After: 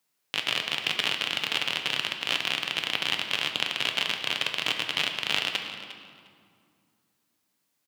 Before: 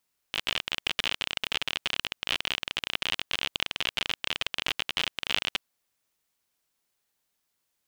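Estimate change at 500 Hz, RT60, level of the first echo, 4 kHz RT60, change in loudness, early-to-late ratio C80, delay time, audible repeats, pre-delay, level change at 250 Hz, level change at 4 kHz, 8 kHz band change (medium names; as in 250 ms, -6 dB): +3.0 dB, 2.2 s, -15.0 dB, 1.5 s, +2.5 dB, 7.0 dB, 354 ms, 2, 7 ms, +3.5 dB, +2.5 dB, +2.0 dB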